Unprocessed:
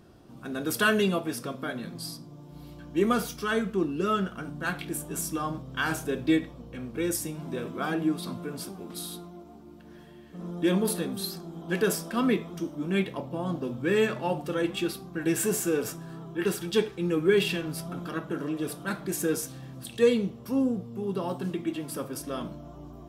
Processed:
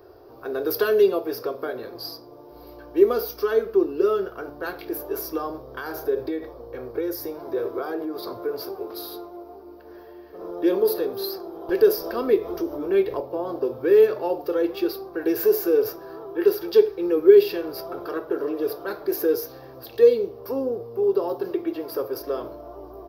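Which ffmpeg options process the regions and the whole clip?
ffmpeg -i in.wav -filter_complex "[0:a]asettb=1/sr,asplit=3[link_01][link_02][link_03];[link_01]atrim=end=5.654[link_04];[link_02]atrim=start=5.65:end=8.53,asetpts=PTS-STARTPTS,afade=type=in:duration=0.004:curve=qsin,afade=type=out:start_time=2.876:duration=0.004:curve=qsin,equalizer=frequency=2700:width_type=o:width=0.29:gain=-6.5,acompressor=threshold=-29dB:ratio=4:attack=3.2:release=140:knee=1:detection=peak[link_05];[link_03]atrim=start=8.526[link_06];[link_04][link_05]acrossfade=duration=0.004:curve1=hsin:curve2=qsin[link_07];[link_07][link_06]acrossfade=duration=0.004:curve1=qsin:curve2=hsin,asettb=1/sr,asplit=3[link_08][link_09][link_10];[link_08]atrim=end=11.694[link_11];[link_09]atrim=start=11.69:end=13.2,asetpts=PTS-STARTPTS,afade=type=in:duration=0.004:curve=qsin,afade=type=out:start_time=1.506:duration=0.004:curve=qsin,acompressor=mode=upward:threshold=-27dB:ratio=2.5:attack=3.2:release=140:knee=2.83:detection=peak,lowshelf=frequency=94:gain=10.5[link_12];[link_10]atrim=start=13.196[link_13];[link_11][link_12]acrossfade=duration=0.004:curve1=hsin:curve2=qsin[link_14];[link_14][link_13]acrossfade=duration=0.004:curve1=qsin:curve2=hsin,bandreject=frequency=2000:width=25,acrossover=split=410|3000[link_15][link_16][link_17];[link_16]acompressor=threshold=-40dB:ratio=2.5[link_18];[link_15][link_18][link_17]amix=inputs=3:normalize=0,firequalizer=gain_entry='entry(110,0);entry(160,-21);entry(400,15);entry(570,10);entry(3200,-6);entry(4800,6);entry(8300,-27);entry(13000,12)':delay=0.05:min_phase=1" out.wav

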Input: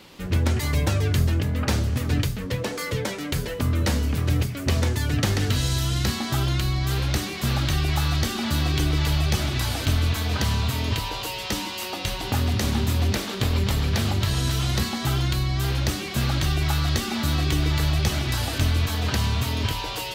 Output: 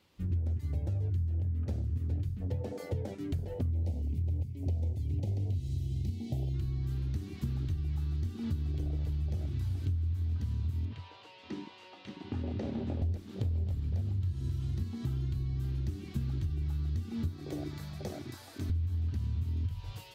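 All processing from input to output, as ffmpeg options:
ffmpeg -i in.wav -filter_complex "[0:a]asettb=1/sr,asplit=3[link_01][link_02][link_03];[link_01]atrim=end=3.704[link_04];[link_02]atrim=start=3.7:end=6.54,asetpts=PTS-STARTPTS,afade=type=in:duration=0.004:curve=qsin,afade=type=out:start_time=2.836:duration=0.004:curve=qsin,acrusher=bits=7:mode=log:mix=0:aa=0.000001,asuperstop=centerf=1300:order=12:qfactor=1.1[link_05];[link_03]atrim=start=6.536[link_06];[link_04][link_05]acrossfade=duration=0.004:curve1=hsin:curve2=qsin[link_07];[link_07][link_06]acrossfade=duration=0.004:curve1=qsin:curve2=hsin,asettb=1/sr,asplit=3[link_08][link_09][link_10];[link_08]atrim=end=10.854[link_11];[link_09]atrim=start=10.85:end=13.02,asetpts=PTS-STARTPTS,afade=type=in:duration=0.004:curve=qsin,afade=type=out:start_time=2.166:duration=0.004:curve=qsin,highpass=220,lowpass=3500,aecho=1:1:580:0.447,atrim=end_sample=95697[link_12];[link_10]atrim=start=13.016[link_13];[link_11][link_12]acrossfade=duration=0.004:curve1=hsin:curve2=qsin[link_14];[link_14][link_13]acrossfade=duration=0.004:curve1=qsin:curve2=hsin,asettb=1/sr,asplit=3[link_15][link_16][link_17];[link_15]atrim=end=17.284[link_18];[link_16]atrim=start=17.28:end=18.7,asetpts=PTS-STARTPTS,afade=type=in:duration=0.004:curve=qsin,afade=type=out:start_time=1.416:duration=0.004:curve=qsin,highpass=280,equalizer=frequency=2900:width_type=o:width=0.36:gain=-8[link_19];[link_17]atrim=start=18.696[link_20];[link_18][link_19]acrossfade=duration=0.004:curve1=hsin:curve2=qsin[link_21];[link_21][link_20]acrossfade=duration=0.004:curve1=qsin:curve2=hsin,afwtdn=0.0708,equalizer=frequency=89:width=4:gain=14.5,acompressor=threshold=-26dB:ratio=6,volume=-4.5dB" out.wav

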